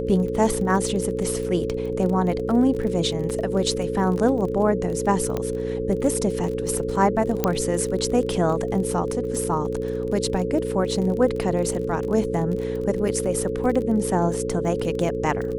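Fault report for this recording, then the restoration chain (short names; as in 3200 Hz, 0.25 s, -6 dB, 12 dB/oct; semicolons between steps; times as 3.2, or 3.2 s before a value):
buzz 60 Hz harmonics 9 -29 dBFS
crackle 27/s -29 dBFS
tone 440 Hz -27 dBFS
5.37 pop -13 dBFS
7.44 pop -6 dBFS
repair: de-click; de-hum 60 Hz, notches 9; notch 440 Hz, Q 30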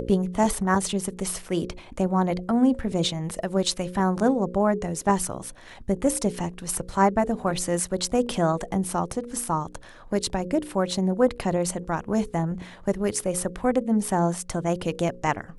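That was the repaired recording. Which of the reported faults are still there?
none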